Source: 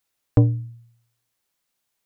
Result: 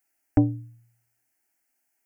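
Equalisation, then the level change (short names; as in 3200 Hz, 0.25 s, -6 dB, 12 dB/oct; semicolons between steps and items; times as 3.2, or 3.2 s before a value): low shelf 77 Hz -6 dB; fixed phaser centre 740 Hz, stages 8; +3.0 dB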